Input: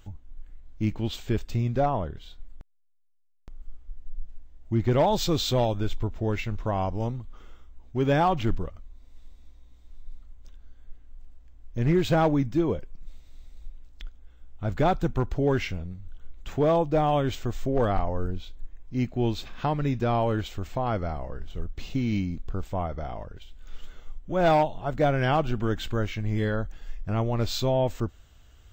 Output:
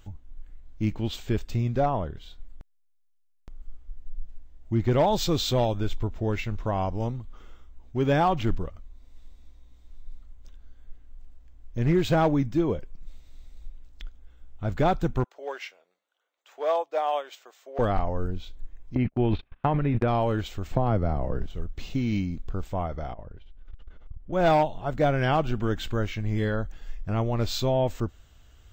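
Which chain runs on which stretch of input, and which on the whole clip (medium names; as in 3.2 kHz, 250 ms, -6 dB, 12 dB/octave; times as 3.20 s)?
15.24–17.79 s: high-pass 520 Hz 24 dB/octave + upward expansion, over -43 dBFS
18.95–20.08 s: gate -32 dBFS, range -41 dB + low-pass 2.9 kHz 24 dB/octave + transient shaper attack +3 dB, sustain +12 dB
20.71–21.46 s: tilt shelf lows +5.5 dB, about 870 Hz + three bands compressed up and down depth 70%
23.13–24.33 s: tape spacing loss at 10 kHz 30 dB + transformer saturation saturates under 94 Hz
whole clip: none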